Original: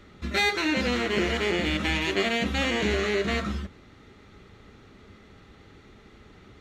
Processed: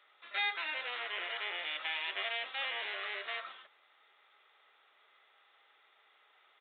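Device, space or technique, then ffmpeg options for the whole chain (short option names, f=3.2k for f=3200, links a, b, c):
musical greeting card: -af "aresample=8000,aresample=44100,highpass=f=680:w=0.5412,highpass=f=680:w=1.3066,equalizer=f=3.7k:t=o:w=0.49:g=4.5,volume=-9dB"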